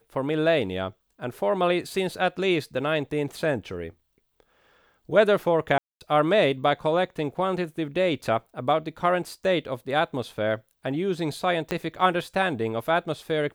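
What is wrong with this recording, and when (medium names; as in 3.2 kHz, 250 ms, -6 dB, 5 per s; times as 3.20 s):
5.78–6.01 s: dropout 228 ms
11.71 s: pop -12 dBFS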